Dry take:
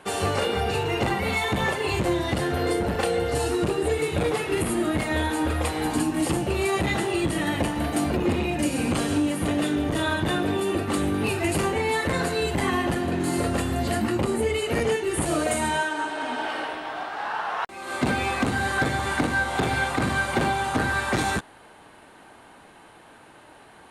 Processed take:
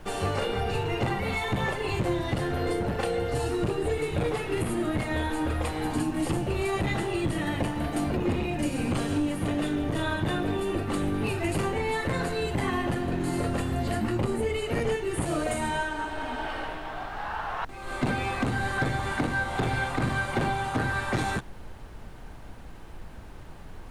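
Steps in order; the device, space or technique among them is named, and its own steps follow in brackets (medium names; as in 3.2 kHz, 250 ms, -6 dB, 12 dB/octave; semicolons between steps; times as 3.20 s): car interior (peaking EQ 120 Hz +6 dB 0.56 oct; treble shelf 4.3 kHz -5 dB; brown noise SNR 12 dB); trim -4 dB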